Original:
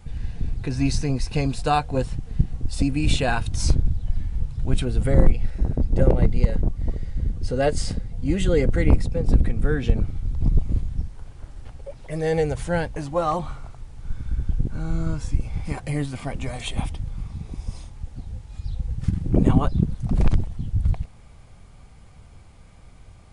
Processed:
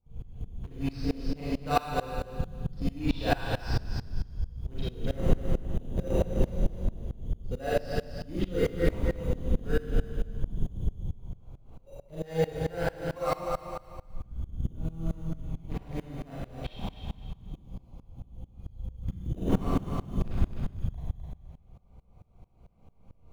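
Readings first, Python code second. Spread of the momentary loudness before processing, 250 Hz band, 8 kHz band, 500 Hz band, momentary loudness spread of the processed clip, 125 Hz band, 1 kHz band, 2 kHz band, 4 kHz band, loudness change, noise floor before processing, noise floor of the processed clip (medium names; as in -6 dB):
15 LU, -8.0 dB, -15.0 dB, -6.0 dB, 17 LU, -10.0 dB, -6.0 dB, -7.0 dB, -8.5 dB, -8.5 dB, -46 dBFS, -58 dBFS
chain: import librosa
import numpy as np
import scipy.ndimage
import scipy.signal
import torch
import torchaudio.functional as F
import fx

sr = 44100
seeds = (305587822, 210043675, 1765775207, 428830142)

p1 = fx.wiener(x, sr, points=25)
p2 = scipy.signal.sosfilt(scipy.signal.ellip(4, 1.0, 40, 5300.0, 'lowpass', fs=sr, output='sos'), p1)
p3 = fx.low_shelf(p2, sr, hz=440.0, db=-5.5)
p4 = fx.notch(p3, sr, hz=850.0, q=23.0)
p5 = fx.sample_hold(p4, sr, seeds[0], rate_hz=3300.0, jitter_pct=0)
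p6 = p4 + (p5 * 10.0 ** (-9.0 / 20.0))
p7 = fx.echo_feedback(p6, sr, ms=256, feedback_pct=29, wet_db=-6)
p8 = fx.rev_schroeder(p7, sr, rt60_s=0.84, comb_ms=33, drr_db=-5.5)
p9 = fx.tremolo_decay(p8, sr, direction='swelling', hz=4.5, depth_db=23)
y = p9 * 10.0 ** (-5.5 / 20.0)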